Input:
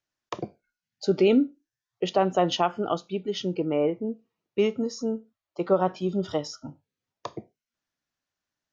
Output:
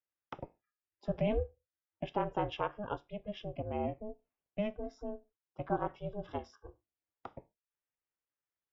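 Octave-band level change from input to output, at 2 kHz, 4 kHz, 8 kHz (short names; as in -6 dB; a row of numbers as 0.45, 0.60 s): -9.5 dB, -17.0 dB, n/a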